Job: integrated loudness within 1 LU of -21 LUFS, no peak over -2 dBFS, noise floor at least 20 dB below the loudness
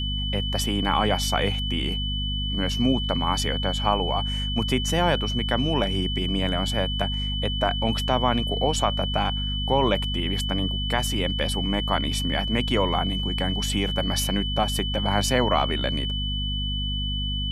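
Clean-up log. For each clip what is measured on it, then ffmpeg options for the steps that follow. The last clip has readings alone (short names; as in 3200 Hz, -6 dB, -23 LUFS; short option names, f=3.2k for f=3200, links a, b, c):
hum 50 Hz; harmonics up to 250 Hz; hum level -26 dBFS; steady tone 3000 Hz; tone level -29 dBFS; loudness -24.5 LUFS; peak -6.0 dBFS; loudness target -21.0 LUFS
-> -af "bandreject=f=50:t=h:w=4,bandreject=f=100:t=h:w=4,bandreject=f=150:t=h:w=4,bandreject=f=200:t=h:w=4,bandreject=f=250:t=h:w=4"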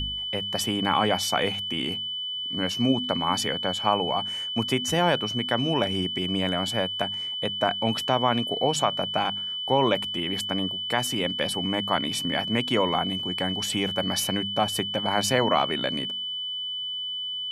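hum none; steady tone 3000 Hz; tone level -29 dBFS
-> -af "bandreject=f=3k:w=30"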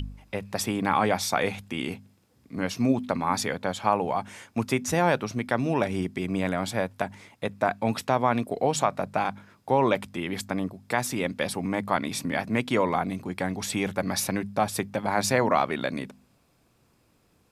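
steady tone none; loudness -27.5 LUFS; peak -7.5 dBFS; loudness target -21.0 LUFS
-> -af "volume=6.5dB,alimiter=limit=-2dB:level=0:latency=1"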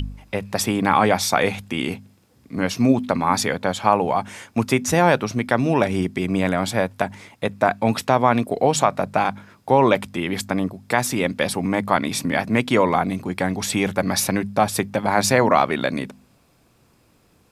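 loudness -21.0 LUFS; peak -2.0 dBFS; noise floor -59 dBFS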